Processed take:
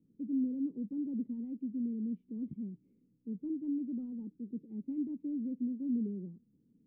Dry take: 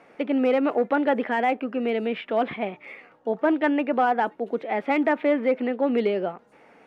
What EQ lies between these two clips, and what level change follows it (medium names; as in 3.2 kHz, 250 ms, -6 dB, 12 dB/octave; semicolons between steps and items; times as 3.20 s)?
inverse Chebyshev low-pass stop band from 630 Hz, stop band 50 dB; -3.0 dB